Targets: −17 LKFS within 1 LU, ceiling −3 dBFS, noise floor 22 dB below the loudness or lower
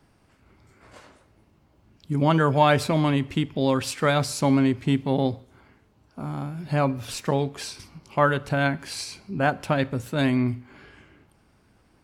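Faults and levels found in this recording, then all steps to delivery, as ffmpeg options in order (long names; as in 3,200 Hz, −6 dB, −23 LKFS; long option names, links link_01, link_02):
integrated loudness −24.0 LKFS; sample peak −6.5 dBFS; target loudness −17.0 LKFS
→ -af "volume=7dB,alimiter=limit=-3dB:level=0:latency=1"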